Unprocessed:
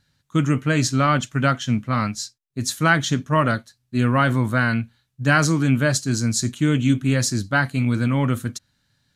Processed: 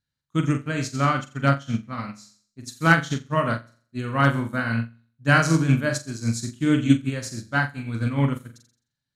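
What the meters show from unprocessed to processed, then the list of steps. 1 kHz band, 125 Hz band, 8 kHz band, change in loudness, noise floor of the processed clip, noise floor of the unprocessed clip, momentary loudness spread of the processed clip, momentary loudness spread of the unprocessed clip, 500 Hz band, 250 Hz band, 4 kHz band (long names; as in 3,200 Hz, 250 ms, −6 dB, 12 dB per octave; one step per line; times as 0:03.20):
−2.5 dB, −3.0 dB, −8.5 dB, −2.5 dB, −84 dBFS, −72 dBFS, 14 LU, 9 LU, −3.0 dB, −3.0 dB, −6.0 dB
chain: flutter between parallel walls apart 7.4 metres, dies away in 0.51 s
hard clipping −5.5 dBFS, distortion −35 dB
expander for the loud parts 2.5 to 1, over −26 dBFS
level +1.5 dB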